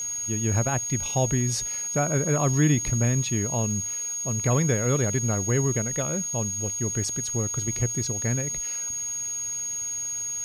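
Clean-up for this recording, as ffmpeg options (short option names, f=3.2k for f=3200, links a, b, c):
-af "adeclick=t=4,bandreject=f=6.6k:w=30,afwtdn=0.0035"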